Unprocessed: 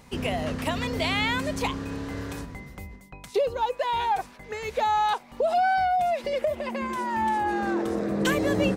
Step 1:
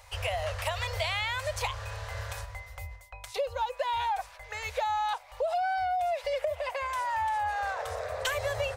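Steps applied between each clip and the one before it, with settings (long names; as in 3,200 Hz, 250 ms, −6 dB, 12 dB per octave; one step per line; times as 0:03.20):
elliptic band-stop filter 100–560 Hz, stop band 40 dB
downward compressor, threshold −28 dBFS, peak gain reduction 7.5 dB
level +1 dB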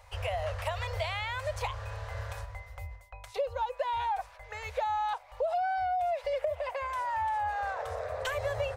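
high-shelf EQ 2,200 Hz −9 dB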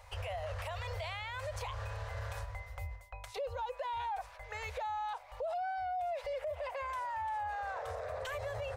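brickwall limiter −32 dBFS, peak gain reduction 11 dB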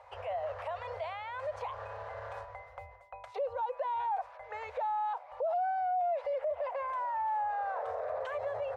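resonant band-pass 710 Hz, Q 1
level +5.5 dB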